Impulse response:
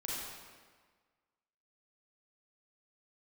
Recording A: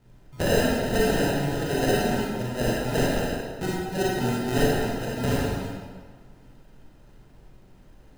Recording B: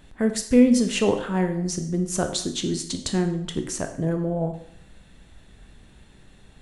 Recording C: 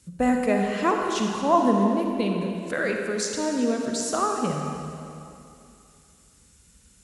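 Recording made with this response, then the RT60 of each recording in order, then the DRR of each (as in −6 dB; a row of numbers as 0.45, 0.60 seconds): A; 1.5, 0.65, 2.7 seconds; −6.0, 6.5, 1.5 decibels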